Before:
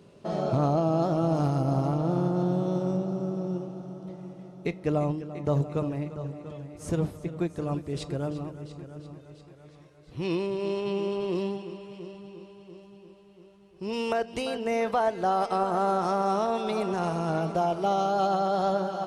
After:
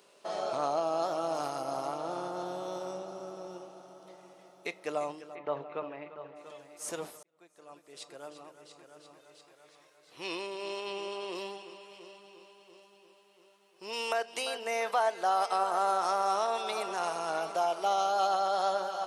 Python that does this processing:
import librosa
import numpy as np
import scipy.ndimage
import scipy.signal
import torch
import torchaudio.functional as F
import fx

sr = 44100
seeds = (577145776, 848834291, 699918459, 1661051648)

y = fx.lowpass(x, sr, hz=3000.0, slope=24, at=(5.34, 6.35), fade=0.02)
y = fx.edit(y, sr, fx.fade_in_span(start_s=7.23, length_s=2.01), tone=tone)
y = scipy.signal.sosfilt(scipy.signal.butter(2, 690.0, 'highpass', fs=sr, output='sos'), y)
y = fx.high_shelf(y, sr, hz=5900.0, db=8.0)